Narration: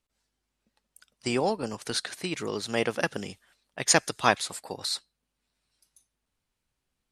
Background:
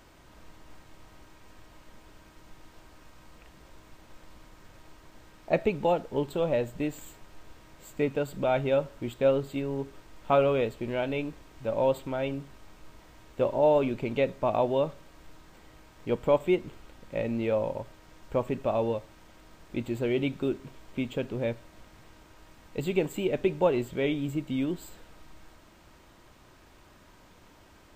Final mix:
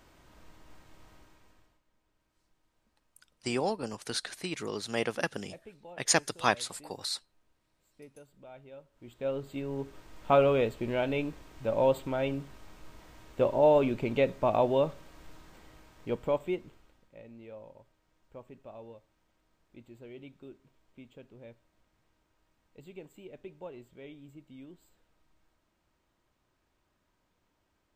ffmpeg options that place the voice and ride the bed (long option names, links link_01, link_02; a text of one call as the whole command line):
ffmpeg -i stem1.wav -i stem2.wav -filter_complex "[0:a]adelay=2200,volume=-4dB[link_01];[1:a]volume=20dB,afade=type=out:start_time=1.1:duration=0.71:silence=0.1,afade=type=in:start_time=8.91:duration=1.28:silence=0.0630957,afade=type=out:start_time=15.35:duration=1.78:silence=0.1[link_02];[link_01][link_02]amix=inputs=2:normalize=0" out.wav